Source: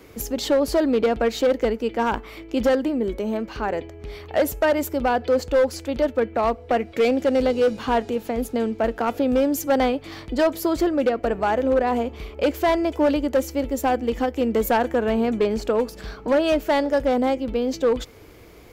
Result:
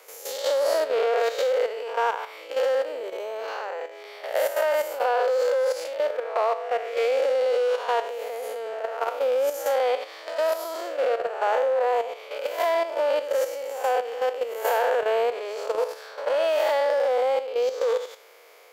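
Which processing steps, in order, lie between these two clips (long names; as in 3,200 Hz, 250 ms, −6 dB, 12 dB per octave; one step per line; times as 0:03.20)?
spectrum smeared in time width 193 ms
elliptic high-pass filter 490 Hz, stop band 70 dB
output level in coarse steps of 10 dB
level +8 dB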